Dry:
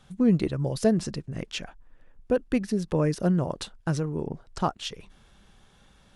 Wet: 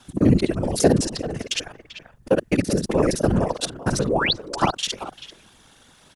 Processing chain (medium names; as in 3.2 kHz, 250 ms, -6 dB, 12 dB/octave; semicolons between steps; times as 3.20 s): time reversed locally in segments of 42 ms; bass shelf 96 Hz -11.5 dB; painted sound rise, 4.07–4.33 s, 240–4800 Hz -29 dBFS; treble shelf 4.9 kHz +9 dB; speakerphone echo 390 ms, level -11 dB; whisper effect; trim +6.5 dB